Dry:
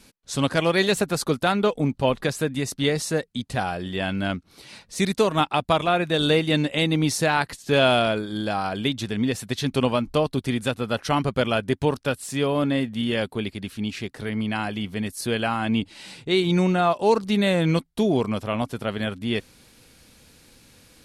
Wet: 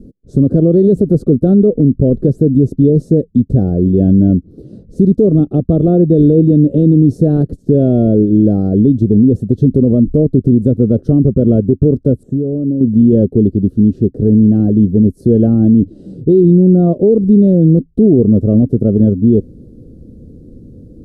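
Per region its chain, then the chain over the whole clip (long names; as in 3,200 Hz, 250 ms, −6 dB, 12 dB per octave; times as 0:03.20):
0:12.23–0:12.81: moving average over 9 samples + downward compressor 10 to 1, threshold −31 dBFS
whole clip: inverse Chebyshev low-pass filter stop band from 860 Hz, stop band 40 dB; boost into a limiter +22 dB; level −1 dB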